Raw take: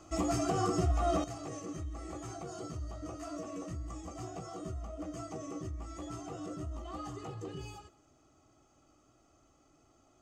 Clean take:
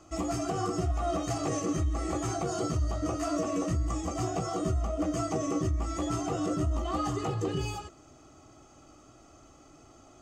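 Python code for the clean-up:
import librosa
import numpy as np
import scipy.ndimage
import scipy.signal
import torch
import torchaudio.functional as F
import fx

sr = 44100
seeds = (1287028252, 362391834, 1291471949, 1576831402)

y = fx.fix_echo_inverse(x, sr, delay_ms=174, level_db=-23.5)
y = fx.fix_level(y, sr, at_s=1.24, step_db=11.5)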